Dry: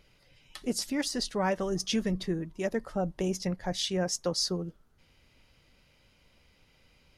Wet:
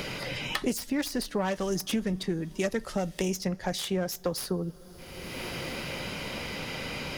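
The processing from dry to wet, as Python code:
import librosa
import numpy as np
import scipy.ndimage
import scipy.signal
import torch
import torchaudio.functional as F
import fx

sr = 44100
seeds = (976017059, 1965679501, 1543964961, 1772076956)

y = fx.self_delay(x, sr, depth_ms=0.088)
y = fx.rev_double_slope(y, sr, seeds[0], early_s=0.31, late_s=4.9, knee_db=-21, drr_db=19.0)
y = fx.band_squash(y, sr, depth_pct=100)
y = F.gain(torch.from_numpy(y), 1.0).numpy()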